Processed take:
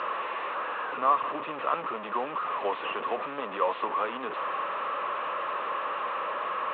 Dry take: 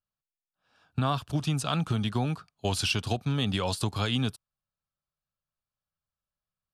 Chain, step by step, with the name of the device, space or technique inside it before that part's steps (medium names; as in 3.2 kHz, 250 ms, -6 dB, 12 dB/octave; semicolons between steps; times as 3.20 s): digital answering machine (band-pass 340–3000 Hz; one-bit delta coder 16 kbps, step -30 dBFS; cabinet simulation 470–3800 Hz, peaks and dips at 510 Hz +5 dB, 740 Hz -6 dB, 1.1 kHz +9 dB, 1.5 kHz -5 dB, 2.2 kHz -8 dB, 3.2 kHz -8 dB); trim +4.5 dB